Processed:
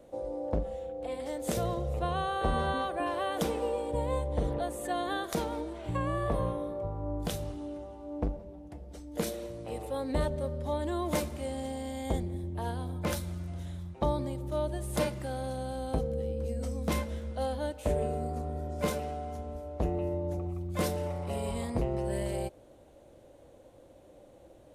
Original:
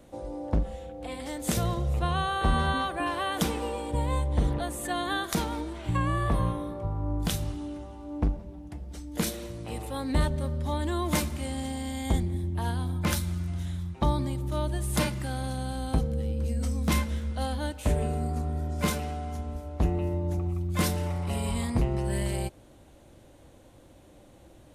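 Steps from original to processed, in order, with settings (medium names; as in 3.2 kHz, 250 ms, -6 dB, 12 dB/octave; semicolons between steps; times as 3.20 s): peaking EQ 530 Hz +11 dB 1.1 oct; trim -7 dB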